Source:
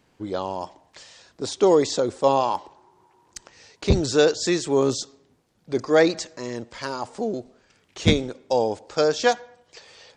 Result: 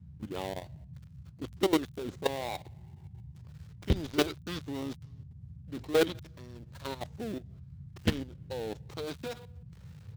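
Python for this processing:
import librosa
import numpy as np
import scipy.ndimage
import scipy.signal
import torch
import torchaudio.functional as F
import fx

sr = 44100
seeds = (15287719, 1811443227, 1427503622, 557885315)

y = fx.dead_time(x, sr, dead_ms=0.18)
y = fx.dynamic_eq(y, sr, hz=4400.0, q=4.2, threshold_db=-50.0, ratio=4.0, max_db=6)
y = fx.level_steps(y, sr, step_db=15)
y = fx.formant_shift(y, sr, semitones=-3)
y = fx.dmg_noise_band(y, sr, seeds[0], low_hz=62.0, high_hz=160.0, level_db=-42.0)
y = y * 10.0 ** (-6.0 / 20.0)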